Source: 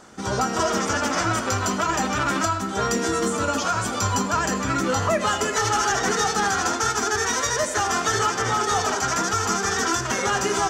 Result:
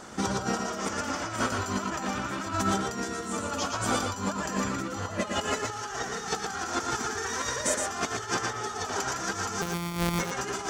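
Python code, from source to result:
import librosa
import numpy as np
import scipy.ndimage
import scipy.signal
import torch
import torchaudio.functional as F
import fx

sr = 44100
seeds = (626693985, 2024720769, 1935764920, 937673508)

y = fx.sample_sort(x, sr, block=256, at=(9.61, 10.18), fade=0.02)
y = fx.over_compress(y, sr, threshold_db=-28.0, ratio=-0.5)
y = y + 10.0 ** (-4.5 / 20.0) * np.pad(y, (int(117 * sr / 1000.0), 0))[:len(y)]
y = F.gain(torch.from_numpy(y), -3.0).numpy()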